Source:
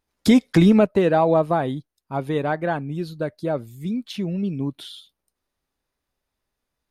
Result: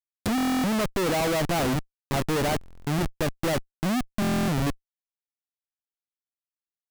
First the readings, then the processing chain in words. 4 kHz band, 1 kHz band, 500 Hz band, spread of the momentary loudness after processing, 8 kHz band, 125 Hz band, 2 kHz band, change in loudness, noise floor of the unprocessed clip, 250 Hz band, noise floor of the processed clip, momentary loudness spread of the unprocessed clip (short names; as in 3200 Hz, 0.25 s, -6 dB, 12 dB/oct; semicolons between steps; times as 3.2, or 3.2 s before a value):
+1.5 dB, -3.5 dB, -7.0 dB, 6 LU, n/a, -3.5 dB, +0.5 dB, -5.0 dB, -82 dBFS, -6.5 dB, under -85 dBFS, 15 LU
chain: band shelf 4100 Hz -13.5 dB; Schmitt trigger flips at -30.5 dBFS; stuck buffer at 0.36/2.59/4.2, samples 1024, times 11; gain -1.5 dB